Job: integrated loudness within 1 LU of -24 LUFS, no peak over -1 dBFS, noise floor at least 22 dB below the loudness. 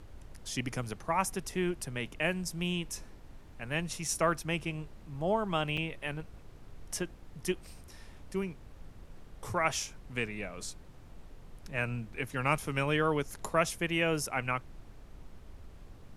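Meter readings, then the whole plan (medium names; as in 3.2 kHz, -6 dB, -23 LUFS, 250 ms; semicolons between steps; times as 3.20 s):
dropouts 1; longest dropout 5.2 ms; noise floor -52 dBFS; noise floor target -56 dBFS; loudness -33.5 LUFS; peak level -12.0 dBFS; loudness target -24.0 LUFS
-> interpolate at 5.77 s, 5.2 ms; noise print and reduce 6 dB; trim +9.5 dB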